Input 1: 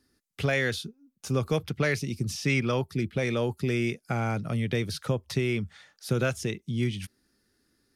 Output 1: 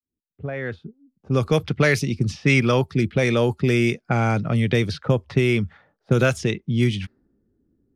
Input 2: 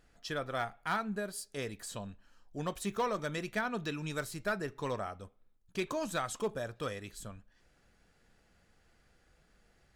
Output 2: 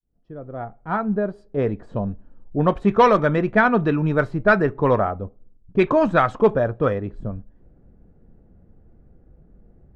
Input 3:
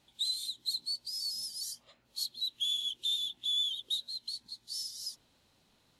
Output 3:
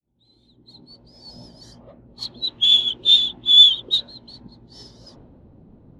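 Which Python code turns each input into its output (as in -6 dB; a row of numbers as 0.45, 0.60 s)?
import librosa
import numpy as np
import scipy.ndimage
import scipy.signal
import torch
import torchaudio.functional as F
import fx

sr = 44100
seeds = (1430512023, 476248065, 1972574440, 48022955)

y = fx.fade_in_head(x, sr, length_s=1.68)
y = fx.env_lowpass(y, sr, base_hz=340.0, full_db=-23.0)
y = y * 10.0 ** (-22 / 20.0) / np.sqrt(np.mean(np.square(y)))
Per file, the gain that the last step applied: +8.0, +18.5, +26.0 dB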